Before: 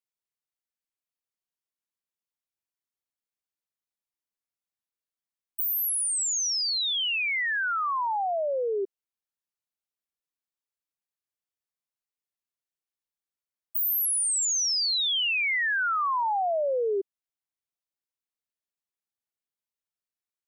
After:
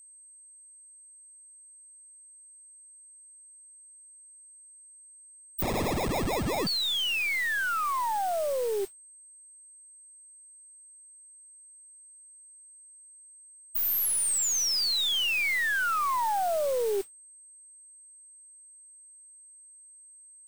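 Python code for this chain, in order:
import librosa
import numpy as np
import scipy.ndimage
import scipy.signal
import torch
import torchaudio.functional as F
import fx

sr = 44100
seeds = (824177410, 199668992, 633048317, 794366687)

y = np.where(x < 0.0, 10.0 ** (-3.0 / 20.0) * x, x)
y = fx.mod_noise(y, sr, seeds[0], snr_db=16)
y = fx.sample_hold(y, sr, seeds[1], rate_hz=1500.0, jitter_pct=0, at=(5.62, 6.67))
y = y + 10.0 ** (-50.0 / 20.0) * np.sin(2.0 * np.pi * 8300.0 * np.arange(len(y)) / sr)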